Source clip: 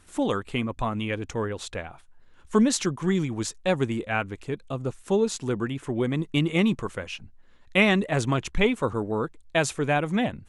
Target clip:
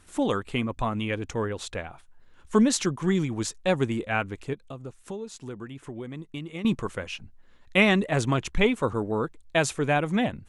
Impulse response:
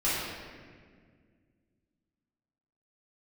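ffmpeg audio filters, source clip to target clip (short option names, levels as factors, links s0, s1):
-filter_complex "[0:a]asettb=1/sr,asplit=3[s0][s1][s2];[s0]atrim=end=4.534[s3];[s1]atrim=start=4.53:end=6.65,asetpts=PTS-STARTPTS,afade=t=in:d=0.004:c=qsin,afade=t=out:st=2.116:d=0.004:c=qsin,acompressor=threshold=0.01:ratio=2.5[s4];[s2]atrim=start=6.646[s5];[s3][s4]acrossfade=d=0.004:c1=hsin:c2=qsin[s6];[s6][s5]acrossfade=d=0.004:c1=qsin:c2=hsin"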